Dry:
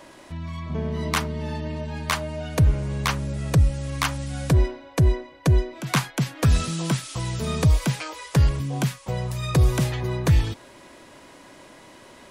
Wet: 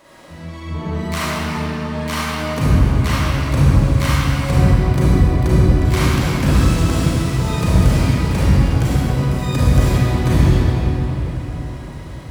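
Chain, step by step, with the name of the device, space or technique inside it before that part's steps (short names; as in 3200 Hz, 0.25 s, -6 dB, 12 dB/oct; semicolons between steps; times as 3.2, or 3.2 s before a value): shimmer-style reverb (harmoniser +12 st -7 dB; reverb RT60 4.2 s, pre-delay 31 ms, DRR -10.5 dB); gain -5 dB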